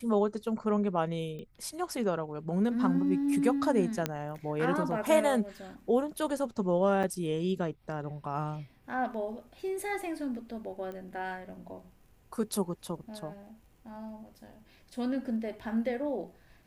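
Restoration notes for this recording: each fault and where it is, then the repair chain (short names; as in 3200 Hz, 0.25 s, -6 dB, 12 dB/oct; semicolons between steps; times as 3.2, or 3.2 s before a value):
1.39 pop -32 dBFS
4.06 pop -14 dBFS
7.03–7.04 gap 6.3 ms
10.92 pop -30 dBFS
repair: de-click; interpolate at 7.03, 6.3 ms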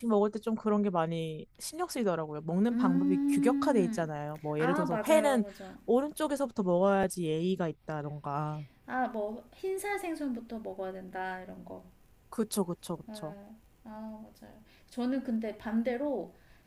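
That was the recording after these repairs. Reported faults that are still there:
none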